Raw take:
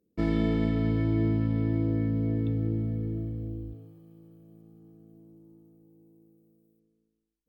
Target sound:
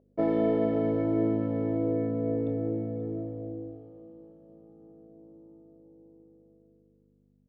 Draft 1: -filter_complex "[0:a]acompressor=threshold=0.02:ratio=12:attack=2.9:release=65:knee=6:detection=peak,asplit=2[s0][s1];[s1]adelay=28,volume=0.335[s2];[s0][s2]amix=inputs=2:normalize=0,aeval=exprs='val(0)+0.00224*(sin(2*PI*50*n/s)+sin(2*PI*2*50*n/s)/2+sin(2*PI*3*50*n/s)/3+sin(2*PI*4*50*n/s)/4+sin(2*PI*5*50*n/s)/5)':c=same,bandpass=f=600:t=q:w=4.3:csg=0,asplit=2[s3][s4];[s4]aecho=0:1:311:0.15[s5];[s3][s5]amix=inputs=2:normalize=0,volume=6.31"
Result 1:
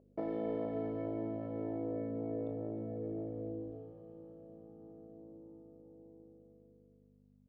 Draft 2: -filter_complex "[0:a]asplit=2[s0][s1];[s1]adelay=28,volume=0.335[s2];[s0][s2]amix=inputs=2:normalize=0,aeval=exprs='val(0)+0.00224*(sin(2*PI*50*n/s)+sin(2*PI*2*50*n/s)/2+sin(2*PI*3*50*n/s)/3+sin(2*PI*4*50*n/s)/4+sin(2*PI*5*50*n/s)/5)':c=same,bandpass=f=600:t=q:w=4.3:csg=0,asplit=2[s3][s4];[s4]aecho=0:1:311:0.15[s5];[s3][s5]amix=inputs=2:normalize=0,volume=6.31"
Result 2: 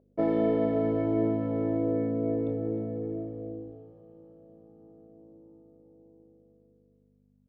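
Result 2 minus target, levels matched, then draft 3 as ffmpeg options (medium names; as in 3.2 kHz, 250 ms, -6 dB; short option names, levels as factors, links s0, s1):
echo 223 ms early
-filter_complex "[0:a]asplit=2[s0][s1];[s1]adelay=28,volume=0.335[s2];[s0][s2]amix=inputs=2:normalize=0,aeval=exprs='val(0)+0.00224*(sin(2*PI*50*n/s)+sin(2*PI*2*50*n/s)/2+sin(2*PI*3*50*n/s)/3+sin(2*PI*4*50*n/s)/4+sin(2*PI*5*50*n/s)/5)':c=same,bandpass=f=600:t=q:w=4.3:csg=0,asplit=2[s3][s4];[s4]aecho=0:1:534:0.15[s5];[s3][s5]amix=inputs=2:normalize=0,volume=6.31"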